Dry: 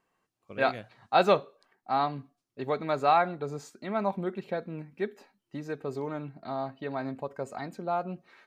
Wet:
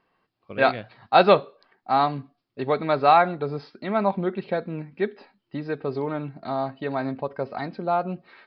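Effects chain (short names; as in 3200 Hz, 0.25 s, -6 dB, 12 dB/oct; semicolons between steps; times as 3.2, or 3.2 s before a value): downsampling 11025 Hz; gain +6.5 dB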